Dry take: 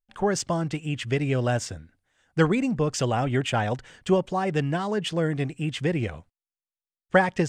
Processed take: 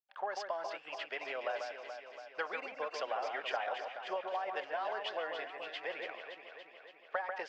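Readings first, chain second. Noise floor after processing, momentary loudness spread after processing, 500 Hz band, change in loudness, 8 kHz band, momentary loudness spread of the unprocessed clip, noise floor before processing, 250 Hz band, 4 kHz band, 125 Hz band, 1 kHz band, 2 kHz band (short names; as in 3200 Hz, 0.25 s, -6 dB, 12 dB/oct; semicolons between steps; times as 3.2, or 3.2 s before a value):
-59 dBFS, 10 LU, -13.0 dB, -13.5 dB, -23.5 dB, 8 LU, under -85 dBFS, -31.0 dB, -10.0 dB, under -40 dB, -8.5 dB, -9.0 dB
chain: elliptic band-pass 620–4900 Hz, stop band 80 dB; high shelf 3200 Hz -10.5 dB; compressor 12:1, threshold -29 dBFS, peak gain reduction 12.5 dB; echo with dull and thin repeats by turns 0.142 s, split 2500 Hz, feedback 80%, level -5 dB; gain -4 dB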